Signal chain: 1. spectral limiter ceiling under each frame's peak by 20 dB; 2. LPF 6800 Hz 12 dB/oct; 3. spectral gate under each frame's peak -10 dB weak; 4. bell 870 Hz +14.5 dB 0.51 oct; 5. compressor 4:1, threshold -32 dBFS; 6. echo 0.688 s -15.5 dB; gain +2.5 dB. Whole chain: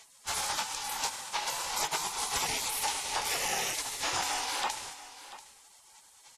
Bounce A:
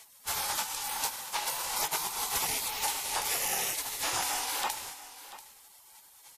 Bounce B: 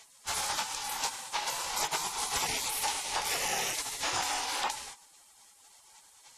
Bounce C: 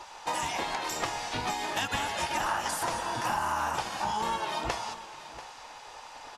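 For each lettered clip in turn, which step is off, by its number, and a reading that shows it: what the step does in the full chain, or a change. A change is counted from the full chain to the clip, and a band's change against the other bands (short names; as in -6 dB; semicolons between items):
2, 8 kHz band +2.0 dB; 6, momentary loudness spread change -8 LU; 1, 8 kHz band -12.0 dB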